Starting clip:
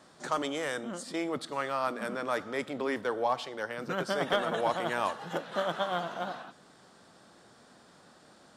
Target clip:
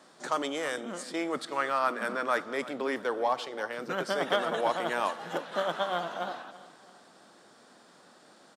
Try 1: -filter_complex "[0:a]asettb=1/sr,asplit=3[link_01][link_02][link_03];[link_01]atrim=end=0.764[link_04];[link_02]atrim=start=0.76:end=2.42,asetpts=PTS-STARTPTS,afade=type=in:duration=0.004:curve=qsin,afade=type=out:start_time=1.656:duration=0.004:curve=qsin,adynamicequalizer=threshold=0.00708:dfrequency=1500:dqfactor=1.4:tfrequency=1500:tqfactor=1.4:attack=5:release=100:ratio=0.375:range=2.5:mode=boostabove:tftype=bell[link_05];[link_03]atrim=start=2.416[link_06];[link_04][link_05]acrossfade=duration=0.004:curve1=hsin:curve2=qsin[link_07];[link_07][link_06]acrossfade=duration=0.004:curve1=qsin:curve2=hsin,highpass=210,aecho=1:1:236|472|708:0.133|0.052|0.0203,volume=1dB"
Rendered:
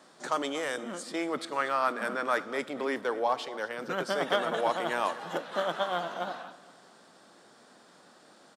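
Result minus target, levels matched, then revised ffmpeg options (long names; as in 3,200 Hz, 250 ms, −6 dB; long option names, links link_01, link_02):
echo 99 ms early
-filter_complex "[0:a]asettb=1/sr,asplit=3[link_01][link_02][link_03];[link_01]atrim=end=0.764[link_04];[link_02]atrim=start=0.76:end=2.42,asetpts=PTS-STARTPTS,afade=type=in:duration=0.004:curve=qsin,afade=type=out:start_time=1.656:duration=0.004:curve=qsin,adynamicequalizer=threshold=0.00708:dfrequency=1500:dqfactor=1.4:tfrequency=1500:tqfactor=1.4:attack=5:release=100:ratio=0.375:range=2.5:mode=boostabove:tftype=bell[link_05];[link_03]atrim=start=2.416[link_06];[link_04][link_05]acrossfade=duration=0.004:curve1=hsin:curve2=qsin[link_07];[link_07][link_06]acrossfade=duration=0.004:curve1=qsin:curve2=hsin,highpass=210,aecho=1:1:335|670|1005:0.133|0.052|0.0203,volume=1dB"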